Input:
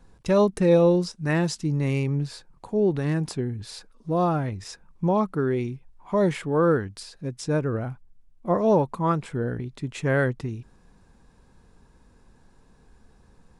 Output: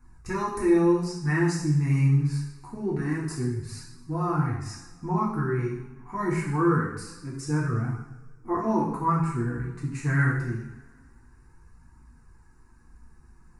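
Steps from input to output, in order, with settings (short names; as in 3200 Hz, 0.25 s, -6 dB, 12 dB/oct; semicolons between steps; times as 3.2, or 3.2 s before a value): fixed phaser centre 1400 Hz, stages 4; two-slope reverb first 0.71 s, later 2 s, from -18 dB, DRR -5 dB; flange 0.25 Hz, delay 0.8 ms, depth 6.5 ms, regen -46%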